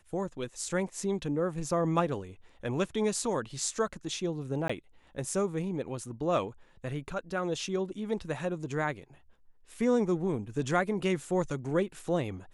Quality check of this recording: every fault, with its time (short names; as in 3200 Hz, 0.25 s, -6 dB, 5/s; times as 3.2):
4.68–4.7 gap 15 ms